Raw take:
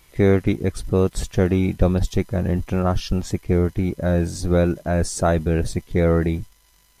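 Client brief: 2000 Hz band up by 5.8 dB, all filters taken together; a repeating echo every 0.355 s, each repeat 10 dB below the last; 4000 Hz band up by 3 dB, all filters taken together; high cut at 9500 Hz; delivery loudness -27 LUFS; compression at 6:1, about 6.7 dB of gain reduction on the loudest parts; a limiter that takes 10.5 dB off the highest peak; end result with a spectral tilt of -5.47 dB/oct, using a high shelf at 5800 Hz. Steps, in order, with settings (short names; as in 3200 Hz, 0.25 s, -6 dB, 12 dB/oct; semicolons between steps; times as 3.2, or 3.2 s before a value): LPF 9500 Hz; bell 2000 Hz +7 dB; bell 4000 Hz +4 dB; high shelf 5800 Hz -5 dB; compressor 6:1, threshold -18 dBFS; limiter -19.5 dBFS; feedback echo 0.355 s, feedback 32%, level -10 dB; gain +3 dB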